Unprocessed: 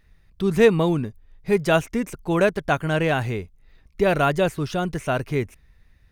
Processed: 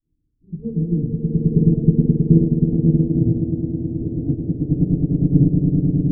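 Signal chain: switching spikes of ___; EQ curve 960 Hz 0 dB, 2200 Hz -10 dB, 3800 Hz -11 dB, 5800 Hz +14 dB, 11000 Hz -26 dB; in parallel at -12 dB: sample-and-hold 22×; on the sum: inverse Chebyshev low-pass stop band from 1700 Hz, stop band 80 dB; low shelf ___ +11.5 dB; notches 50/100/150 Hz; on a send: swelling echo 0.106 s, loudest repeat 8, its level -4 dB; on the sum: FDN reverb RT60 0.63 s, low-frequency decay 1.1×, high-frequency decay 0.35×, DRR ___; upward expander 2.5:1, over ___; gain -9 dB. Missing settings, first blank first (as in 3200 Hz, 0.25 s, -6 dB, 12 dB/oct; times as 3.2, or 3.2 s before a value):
-19 dBFS, 140 Hz, -9.5 dB, -18 dBFS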